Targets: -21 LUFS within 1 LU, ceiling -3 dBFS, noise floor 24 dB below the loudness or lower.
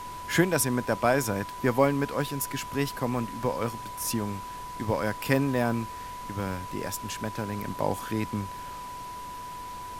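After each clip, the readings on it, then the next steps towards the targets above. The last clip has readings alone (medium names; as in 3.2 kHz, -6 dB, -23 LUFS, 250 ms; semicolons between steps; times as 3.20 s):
steady tone 990 Hz; tone level -37 dBFS; noise floor -39 dBFS; noise floor target -54 dBFS; loudness -29.5 LUFS; peak level -7.5 dBFS; loudness target -21.0 LUFS
-> band-stop 990 Hz, Q 30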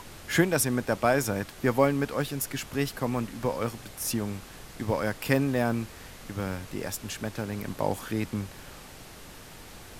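steady tone not found; noise floor -47 dBFS; noise floor target -53 dBFS
-> noise print and reduce 6 dB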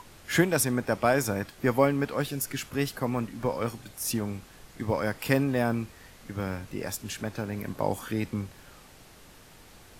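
noise floor -52 dBFS; noise floor target -53 dBFS
-> noise print and reduce 6 dB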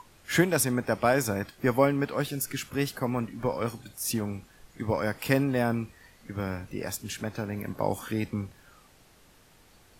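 noise floor -58 dBFS; loudness -29.0 LUFS; peak level -7.5 dBFS; loudness target -21.0 LUFS
-> trim +8 dB; peak limiter -3 dBFS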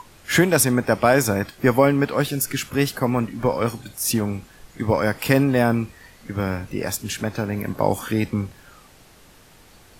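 loudness -21.5 LUFS; peak level -3.0 dBFS; noise floor -50 dBFS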